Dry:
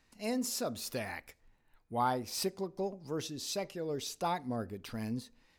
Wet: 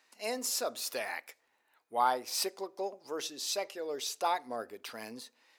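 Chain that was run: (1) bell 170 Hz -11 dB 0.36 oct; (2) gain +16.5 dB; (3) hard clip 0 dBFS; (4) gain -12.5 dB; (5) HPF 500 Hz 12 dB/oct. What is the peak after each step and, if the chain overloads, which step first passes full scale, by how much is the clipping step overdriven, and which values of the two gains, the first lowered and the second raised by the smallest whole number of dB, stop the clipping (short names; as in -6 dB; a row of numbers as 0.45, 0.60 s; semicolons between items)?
-18.5, -2.0, -2.0, -14.5, -15.0 dBFS; no overload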